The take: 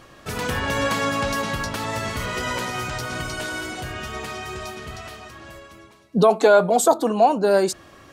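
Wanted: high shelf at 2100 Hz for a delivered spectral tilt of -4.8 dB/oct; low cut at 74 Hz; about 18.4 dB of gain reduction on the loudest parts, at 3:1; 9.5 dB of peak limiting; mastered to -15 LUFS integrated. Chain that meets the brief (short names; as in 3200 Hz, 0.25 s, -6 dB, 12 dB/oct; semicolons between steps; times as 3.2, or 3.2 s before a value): HPF 74 Hz; high shelf 2100 Hz -7 dB; compressor 3:1, threshold -37 dBFS; gain +25 dB; limiter -5.5 dBFS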